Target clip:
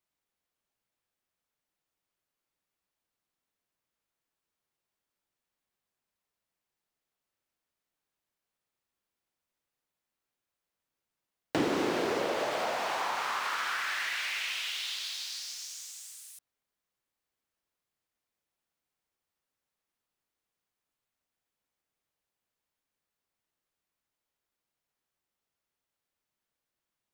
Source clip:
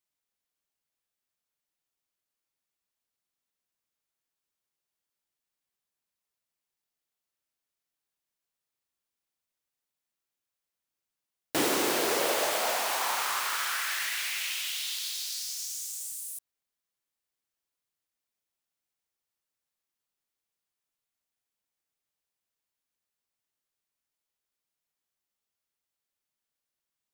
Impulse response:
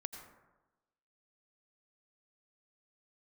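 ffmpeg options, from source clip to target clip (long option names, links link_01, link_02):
-filter_complex "[0:a]acrossover=split=6700[link_01][link_02];[link_02]acompressor=threshold=-47dB:ratio=4:attack=1:release=60[link_03];[link_01][link_03]amix=inputs=2:normalize=0,highshelf=frequency=3000:gain=-8.5,acrossover=split=270[link_04][link_05];[link_05]acompressor=threshold=-34dB:ratio=6[link_06];[link_04][link_06]amix=inputs=2:normalize=0,volume=5dB"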